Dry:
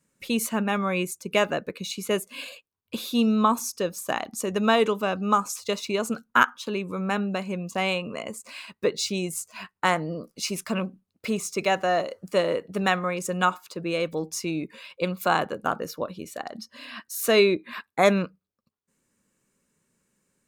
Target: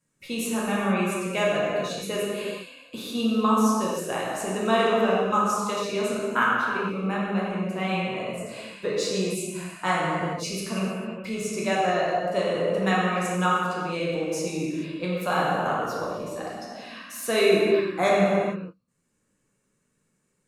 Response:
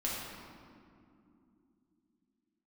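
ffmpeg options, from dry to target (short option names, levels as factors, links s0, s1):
-filter_complex "[0:a]asettb=1/sr,asplit=3[s0][s1][s2];[s0]atrim=end=6.244[s3];[s1]atrim=start=6.24:end=8.38,asetpts=PTS-STARTPTS,afade=t=in:d=0.004:c=qsin,afade=t=out:st=2.136:d=0.004:c=qsin,equalizer=f=6500:w=0.96:g=-9[s4];[s2]atrim=start=8.376[s5];[s3][s4]acrossfade=d=0.004:c1=hsin:c2=qsin[s6];[s6][s5]acrossfade=d=0.004:c1=qsin:c2=hsin[s7];[1:a]atrim=start_sample=2205,afade=t=out:st=0.31:d=0.01,atrim=end_sample=14112,asetrate=24696,aresample=44100[s8];[s7][s8]afir=irnorm=-1:irlink=0,volume=0.398"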